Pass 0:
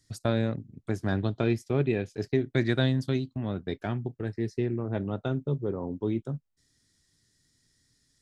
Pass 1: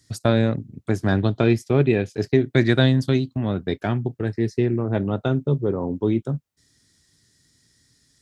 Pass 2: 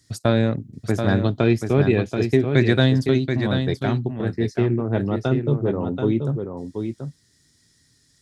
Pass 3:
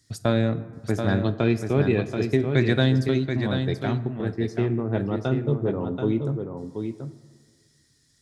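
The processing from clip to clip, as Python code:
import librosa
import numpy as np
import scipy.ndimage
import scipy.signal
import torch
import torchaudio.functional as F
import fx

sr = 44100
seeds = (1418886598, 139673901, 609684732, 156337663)

y1 = scipy.signal.sosfilt(scipy.signal.butter(2, 51.0, 'highpass', fs=sr, output='sos'), x)
y1 = F.gain(torch.from_numpy(y1), 8.0).numpy()
y2 = y1 + 10.0 ** (-6.5 / 20.0) * np.pad(y1, (int(732 * sr / 1000.0), 0))[:len(y1)]
y3 = fx.rev_plate(y2, sr, seeds[0], rt60_s=1.6, hf_ratio=0.4, predelay_ms=0, drr_db=13.0)
y3 = F.gain(torch.from_numpy(y3), -3.5).numpy()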